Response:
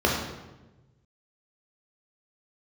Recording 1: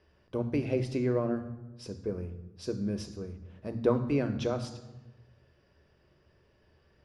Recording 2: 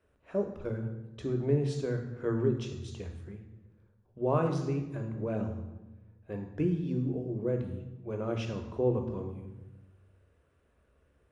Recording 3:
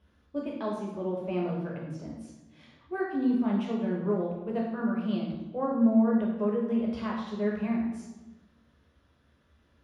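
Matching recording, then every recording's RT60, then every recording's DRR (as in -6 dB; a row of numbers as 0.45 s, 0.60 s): 3; 1.1 s, 1.1 s, 1.1 s; 9.0 dB, 4.0 dB, -2.5 dB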